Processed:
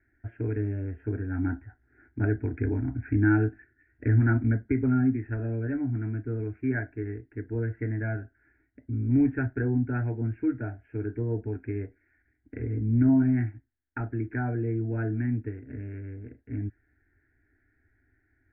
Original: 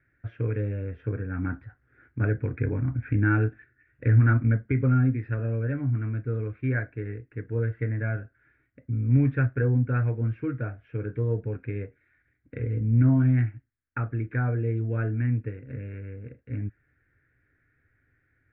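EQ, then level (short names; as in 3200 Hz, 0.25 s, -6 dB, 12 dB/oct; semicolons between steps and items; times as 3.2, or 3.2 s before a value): LPF 1300 Hz 6 dB/oct; air absorption 220 m; fixed phaser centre 770 Hz, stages 8; +5.0 dB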